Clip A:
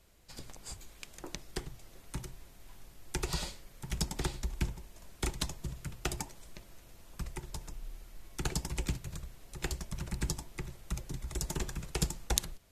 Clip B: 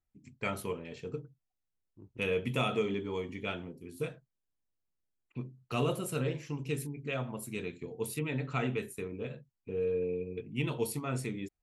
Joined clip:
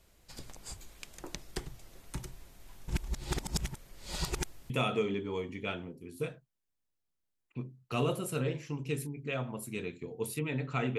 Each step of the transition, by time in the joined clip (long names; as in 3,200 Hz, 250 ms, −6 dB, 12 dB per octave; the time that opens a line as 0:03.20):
clip A
0:02.88–0:04.70: reverse
0:04.70: continue with clip B from 0:02.50